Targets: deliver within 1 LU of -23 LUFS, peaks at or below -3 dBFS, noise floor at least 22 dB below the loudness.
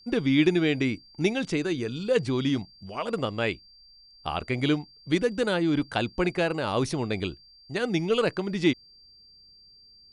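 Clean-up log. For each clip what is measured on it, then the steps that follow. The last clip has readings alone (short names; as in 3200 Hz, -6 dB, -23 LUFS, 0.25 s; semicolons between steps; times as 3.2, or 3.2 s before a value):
steady tone 4700 Hz; tone level -52 dBFS; loudness -27.0 LUFS; peak -9.5 dBFS; loudness target -23.0 LUFS
-> notch 4700 Hz, Q 30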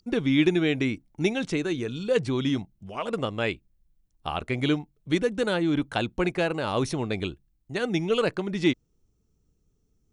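steady tone none; loudness -27.0 LUFS; peak -9.5 dBFS; loudness target -23.0 LUFS
-> gain +4 dB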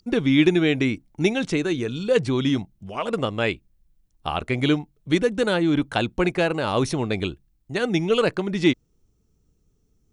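loudness -23.0 LUFS; peak -5.5 dBFS; noise floor -67 dBFS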